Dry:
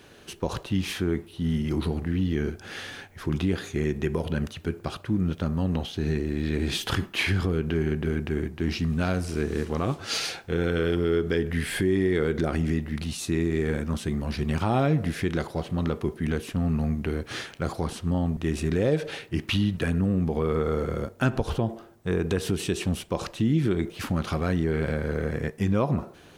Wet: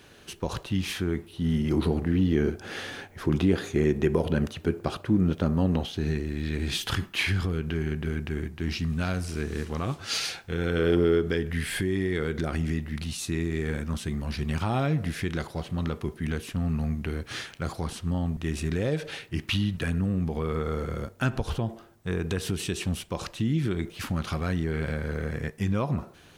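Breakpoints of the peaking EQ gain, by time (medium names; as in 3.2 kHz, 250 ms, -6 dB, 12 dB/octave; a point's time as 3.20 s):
peaking EQ 430 Hz 2.5 oct
1.13 s -3 dB
1.87 s +4.5 dB
5.63 s +4.5 dB
6.31 s -6 dB
10.56 s -6 dB
10.97 s +5 dB
11.49 s -5.5 dB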